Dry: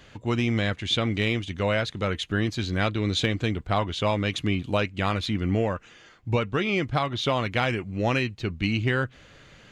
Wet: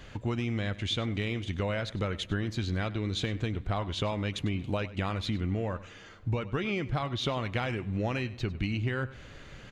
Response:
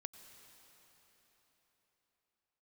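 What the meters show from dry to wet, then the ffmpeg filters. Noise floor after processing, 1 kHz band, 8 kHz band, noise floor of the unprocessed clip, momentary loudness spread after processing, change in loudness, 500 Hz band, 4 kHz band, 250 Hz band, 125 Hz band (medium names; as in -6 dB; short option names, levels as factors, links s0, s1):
-49 dBFS, -8.0 dB, -6.0 dB, -52 dBFS, 3 LU, -6.0 dB, -7.0 dB, -7.0 dB, -6.0 dB, -4.0 dB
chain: -filter_complex "[0:a]lowshelf=f=61:g=10,acompressor=threshold=0.0355:ratio=6,asplit=2[s0][s1];[s1]adelay=99.13,volume=0.141,highshelf=f=4000:g=-2.23[s2];[s0][s2]amix=inputs=2:normalize=0,asplit=2[s3][s4];[1:a]atrim=start_sample=2205,lowpass=2900[s5];[s4][s5]afir=irnorm=-1:irlink=0,volume=0.355[s6];[s3][s6]amix=inputs=2:normalize=0"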